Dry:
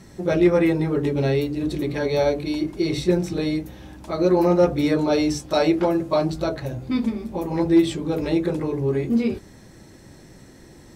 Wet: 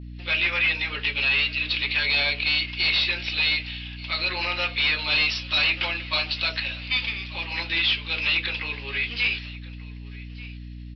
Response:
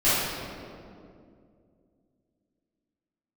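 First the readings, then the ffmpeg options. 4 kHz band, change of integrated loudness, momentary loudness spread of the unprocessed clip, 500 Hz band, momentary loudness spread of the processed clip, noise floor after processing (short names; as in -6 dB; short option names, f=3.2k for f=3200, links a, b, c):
+13.5 dB, -1.0 dB, 9 LU, -19.5 dB, 18 LU, -38 dBFS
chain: -af "agate=range=-33dB:threshold=-34dB:ratio=3:detection=peak,dynaudnorm=f=160:g=3:m=7dB,highpass=f=2.7k:t=q:w=4.6,asoftclip=type=tanh:threshold=-24.5dB,aresample=11025,aresample=44100,aecho=1:1:1185:0.1,aeval=exprs='val(0)+0.00708*(sin(2*PI*60*n/s)+sin(2*PI*2*60*n/s)/2+sin(2*PI*3*60*n/s)/3+sin(2*PI*4*60*n/s)/4+sin(2*PI*5*60*n/s)/5)':c=same,volume=6.5dB"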